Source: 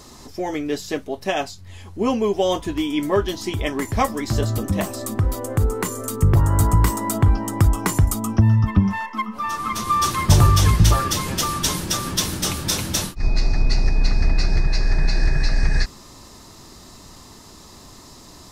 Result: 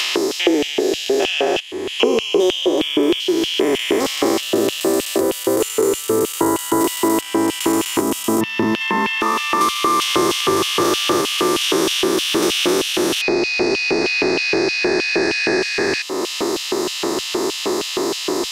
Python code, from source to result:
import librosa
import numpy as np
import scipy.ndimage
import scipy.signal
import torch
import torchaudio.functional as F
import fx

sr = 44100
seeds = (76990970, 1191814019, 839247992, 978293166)

y = fx.spec_steps(x, sr, hold_ms=400)
y = fx.filter_lfo_highpass(y, sr, shape='square', hz=3.2, low_hz=370.0, high_hz=2900.0, q=5.4)
y = fx.band_squash(y, sr, depth_pct=100)
y = y * librosa.db_to_amplitude(7.0)